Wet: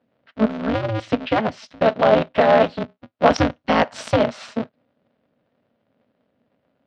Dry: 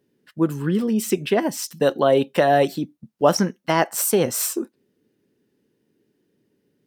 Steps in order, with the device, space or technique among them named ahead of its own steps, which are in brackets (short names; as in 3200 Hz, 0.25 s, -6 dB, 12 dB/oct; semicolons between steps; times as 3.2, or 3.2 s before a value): 3.3–4.16 tone controls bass +8 dB, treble +10 dB; ring modulator pedal into a guitar cabinet (polarity switched at an audio rate 110 Hz; speaker cabinet 110–3900 Hz, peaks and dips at 240 Hz +8 dB, 350 Hz -10 dB, 620 Hz +8 dB, 1400 Hz +3 dB); gain -1 dB